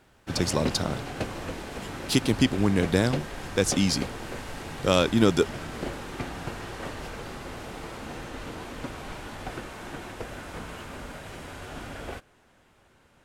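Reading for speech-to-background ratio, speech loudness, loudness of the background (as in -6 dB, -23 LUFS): 11.5 dB, -25.5 LUFS, -37.0 LUFS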